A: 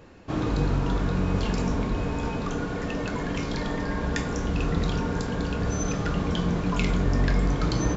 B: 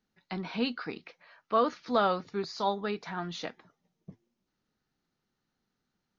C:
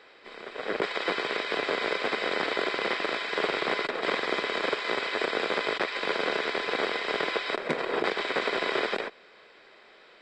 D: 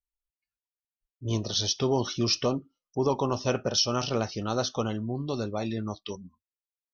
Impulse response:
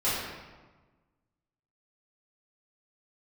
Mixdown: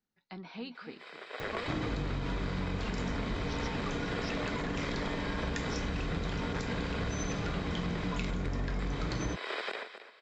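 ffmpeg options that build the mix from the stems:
-filter_complex "[0:a]acompressor=mode=upward:threshold=-35dB:ratio=2.5,adelay=1400,volume=0.5dB[a];[1:a]acompressor=threshold=-28dB:ratio=6,volume=-8.5dB,asplit=2[b][c];[c]volume=-12dB[d];[2:a]highpass=f=610:p=1,adelay=750,volume=-4dB,asplit=2[e][f];[f]volume=-13.5dB[g];[3:a]adelay=1950,volume=-15.5dB[h];[d][g]amix=inputs=2:normalize=0,aecho=0:1:265:1[i];[a][b][e][h][i]amix=inputs=5:normalize=0,acompressor=threshold=-31dB:ratio=6"

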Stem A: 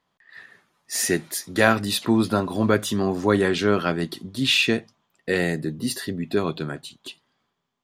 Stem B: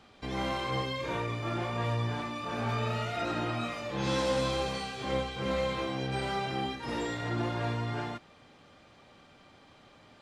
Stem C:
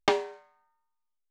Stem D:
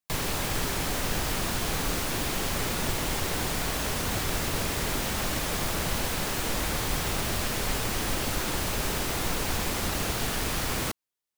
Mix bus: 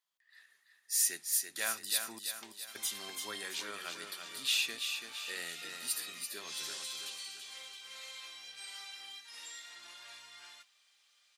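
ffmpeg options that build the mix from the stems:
-filter_complex "[0:a]volume=-4.5dB,asplit=3[a][b][c];[a]atrim=end=2.19,asetpts=PTS-STARTPTS,afade=t=out:st=2.186:d=0.004:c=hsin[d];[b]atrim=start=2.19:end=2.75,asetpts=PTS-STARTPTS,volume=0[e];[c]atrim=start=2.75,asetpts=PTS-STARTPTS,afade=t=in:d=0.004:c=hsin[f];[d][e][f]concat=n=3:v=0:a=1,asplit=2[g][h];[h]volume=-6.5dB[i];[1:a]tiltshelf=f=860:g=-9,flanger=delay=3.4:depth=3.1:regen=-79:speed=0.3:shape=triangular,adelay=2450,volume=-2dB[j];[2:a]adelay=2350,volume=-16dB[k];[i]aecho=0:1:335|670|1005|1340|1675|2010|2345:1|0.47|0.221|0.104|0.0488|0.0229|0.0108[l];[g][j][k][l]amix=inputs=4:normalize=0,aderivative"

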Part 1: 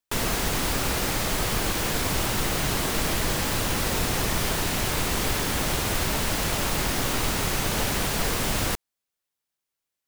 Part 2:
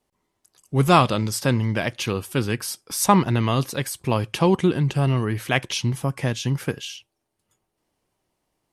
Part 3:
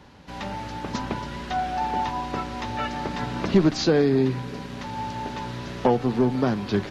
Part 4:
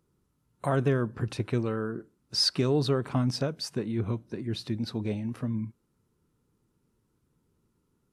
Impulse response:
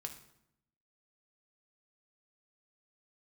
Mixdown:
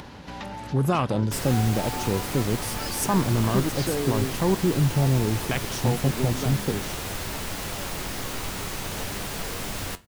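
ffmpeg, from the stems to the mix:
-filter_complex "[0:a]flanger=delay=9.7:depth=1.6:regen=68:speed=2:shape=sinusoidal,adelay=1200,volume=-3.5dB,asplit=2[a][b];[b]volume=-13dB[c];[1:a]afwtdn=0.0708,bass=f=250:g=1,treble=f=4k:g=13,alimiter=limit=-13.5dB:level=0:latency=1,volume=-0.5dB[d];[2:a]volume=-9dB[e];[3:a]adelay=450,volume=-15dB[f];[4:a]atrim=start_sample=2205[g];[c][g]afir=irnorm=-1:irlink=0[h];[a][d][e][f][h]amix=inputs=5:normalize=0,acompressor=mode=upward:threshold=-28dB:ratio=2.5"

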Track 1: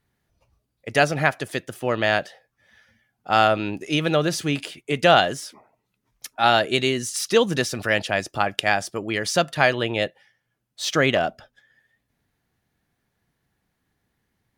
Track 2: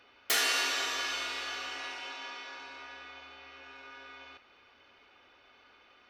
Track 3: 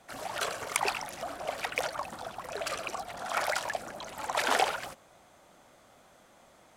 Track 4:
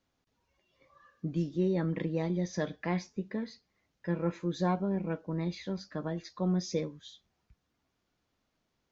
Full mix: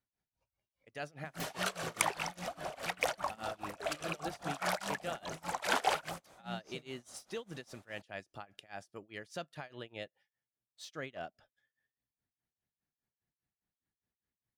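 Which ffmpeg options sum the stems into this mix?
-filter_complex "[0:a]alimiter=limit=-11dB:level=0:latency=1:release=37,volume=-18.5dB[a];[1:a]adelay=1100,volume=-15.5dB[b];[2:a]adelay=1250,volume=0.5dB[c];[3:a]aecho=1:1:1.3:0.65,volume=-15.5dB[d];[a][b][c][d]amix=inputs=4:normalize=0,tremolo=f=4.9:d=0.94"

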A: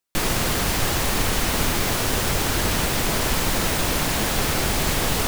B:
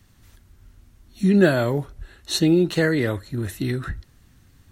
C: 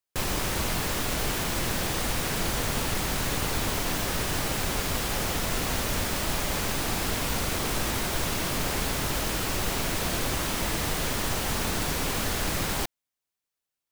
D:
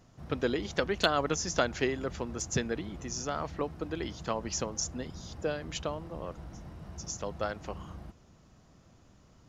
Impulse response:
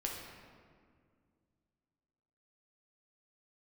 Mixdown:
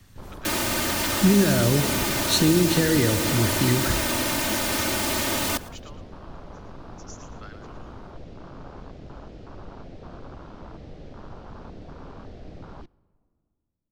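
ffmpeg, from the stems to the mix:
-filter_complex "[0:a]highpass=f=88:w=0.5412,highpass=f=88:w=1.3066,aecho=1:1:3.3:0.79,adelay=300,volume=-3.5dB,asplit=2[a][b];[b]volume=-20.5dB[c];[1:a]alimiter=limit=-13.5dB:level=0:latency=1,volume=0.5dB,asplit=2[d][e];[e]volume=-6.5dB[f];[2:a]afwtdn=0.0398,lowpass=f=5.1k:w=0.5412,lowpass=f=5.1k:w=1.3066,volume=-10.5dB,asplit=2[g][h];[h]volume=-22.5dB[i];[3:a]highpass=f=1k:w=0.5412,highpass=f=1k:w=1.3066,volume=-7dB,asplit=2[j][k];[k]volume=-8dB[l];[4:a]atrim=start_sample=2205[m];[f][i]amix=inputs=2:normalize=0[n];[n][m]afir=irnorm=-1:irlink=0[o];[c][l]amix=inputs=2:normalize=0,aecho=0:1:113|226|339|452:1|0.24|0.0576|0.0138[p];[a][d][g][j][o][p]amix=inputs=6:normalize=0,acrossover=split=320|3000[q][r][s];[r]acompressor=threshold=-24dB:ratio=6[t];[q][t][s]amix=inputs=3:normalize=0"

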